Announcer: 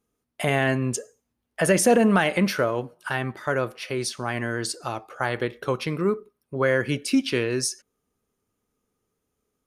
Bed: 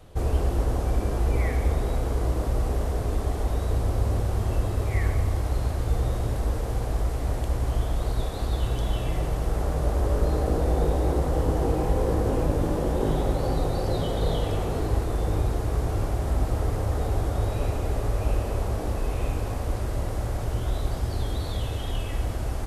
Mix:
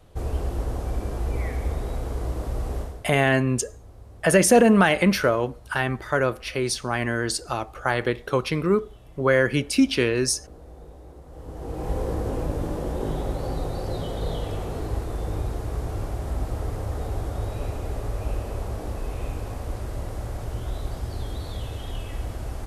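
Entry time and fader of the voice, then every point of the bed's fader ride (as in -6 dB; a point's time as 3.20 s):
2.65 s, +2.5 dB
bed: 2.80 s -3.5 dB
3.13 s -21.5 dB
11.24 s -21.5 dB
11.91 s -3.5 dB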